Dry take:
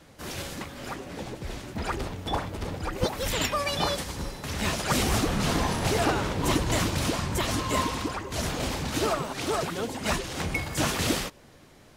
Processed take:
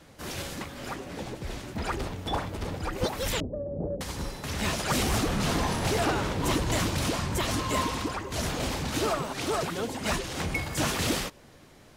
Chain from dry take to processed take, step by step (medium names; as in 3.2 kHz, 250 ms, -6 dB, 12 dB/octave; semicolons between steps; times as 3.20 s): 3.40–4.01 s: elliptic low-pass 570 Hz, stop band 80 dB; saturation -18 dBFS, distortion -19 dB